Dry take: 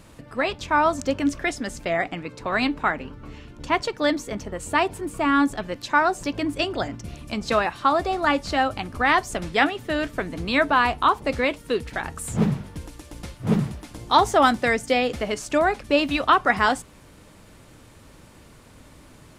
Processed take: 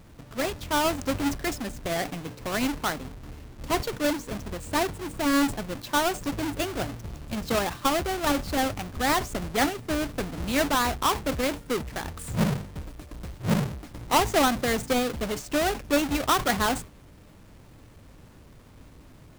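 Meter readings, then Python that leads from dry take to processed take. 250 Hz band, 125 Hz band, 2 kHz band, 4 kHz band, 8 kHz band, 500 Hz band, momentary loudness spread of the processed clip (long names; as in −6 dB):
−2.5 dB, −1.0 dB, −6.5 dB, −1.5 dB, +4.5 dB, −4.0 dB, 12 LU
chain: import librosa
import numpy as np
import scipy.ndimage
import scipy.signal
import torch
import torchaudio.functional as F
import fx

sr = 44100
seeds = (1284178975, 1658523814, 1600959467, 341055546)

y = fx.halfwave_hold(x, sr)
y = fx.low_shelf(y, sr, hz=180.0, db=4.0)
y = fx.sustainer(y, sr, db_per_s=150.0)
y = y * librosa.db_to_amplitude(-9.0)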